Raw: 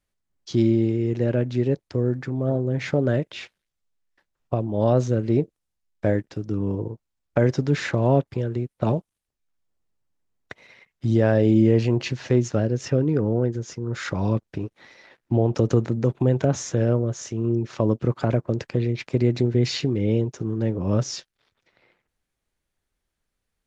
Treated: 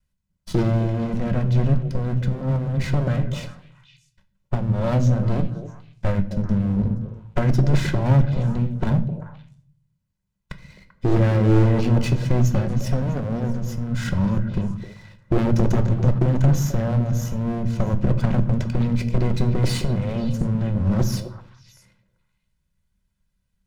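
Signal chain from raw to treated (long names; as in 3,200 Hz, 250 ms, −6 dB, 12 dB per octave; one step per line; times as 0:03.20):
lower of the sound and its delayed copy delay 2 ms
low shelf with overshoot 280 Hz +10 dB, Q 3
wave folding −11 dBFS
echo through a band-pass that steps 130 ms, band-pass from 170 Hz, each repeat 1.4 octaves, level −5 dB
on a send at −8.5 dB: convolution reverb RT60 0.55 s, pre-delay 3 ms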